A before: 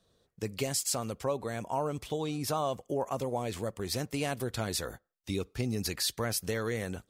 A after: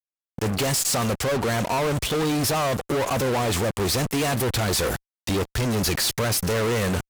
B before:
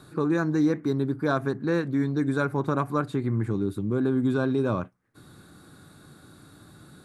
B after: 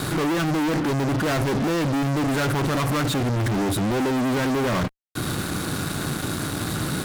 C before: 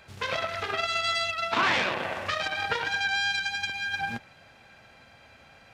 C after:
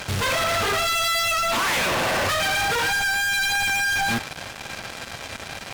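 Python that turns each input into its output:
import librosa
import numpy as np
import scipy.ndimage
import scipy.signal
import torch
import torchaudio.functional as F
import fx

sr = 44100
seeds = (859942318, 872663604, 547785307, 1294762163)

p1 = fx.over_compress(x, sr, threshold_db=-35.0, ratio=-1.0)
p2 = x + (p1 * librosa.db_to_amplitude(-3.0))
p3 = fx.fuzz(p2, sr, gain_db=43.0, gate_db=-45.0)
y = p3 * librosa.db_to_amplitude(-8.0)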